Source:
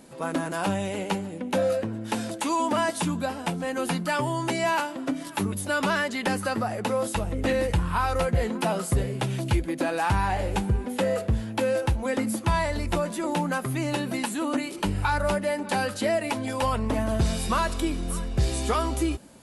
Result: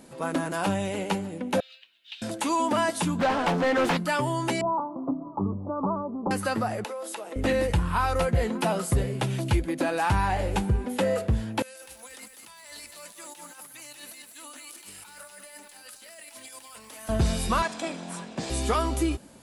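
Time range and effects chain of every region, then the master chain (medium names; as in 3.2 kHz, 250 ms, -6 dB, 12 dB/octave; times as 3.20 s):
1.60–2.22 s: Butterworth band-pass 3.3 kHz, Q 2.3 + companded quantiser 8-bit
3.19–3.97 s: low-pass 8.7 kHz + overdrive pedal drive 24 dB, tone 1.8 kHz, clips at -15 dBFS + loudspeaker Doppler distortion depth 0.29 ms
4.61–6.31 s: steep low-pass 1.2 kHz 96 dB/octave + dynamic bell 560 Hz, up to -4 dB, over -39 dBFS, Q 2.3
6.84–7.36 s: high-pass 340 Hz 24 dB/octave + compression, threshold -32 dBFS
11.62–17.09 s: differentiator + compressor with a negative ratio -47 dBFS + bit-crushed delay 198 ms, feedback 35%, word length 9-bit, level -5 dB
17.62–18.50 s: comb filter that takes the minimum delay 1.2 ms + Chebyshev band-pass 190–8400 Hz, order 3
whole clip: none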